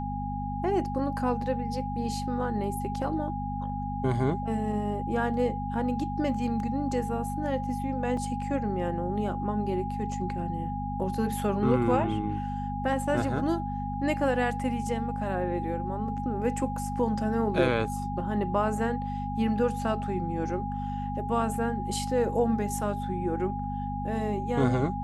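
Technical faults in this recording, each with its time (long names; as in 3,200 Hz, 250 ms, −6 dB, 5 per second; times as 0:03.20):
mains hum 50 Hz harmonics 5 −34 dBFS
whistle 820 Hz −34 dBFS
0:08.17: drop-out 3.4 ms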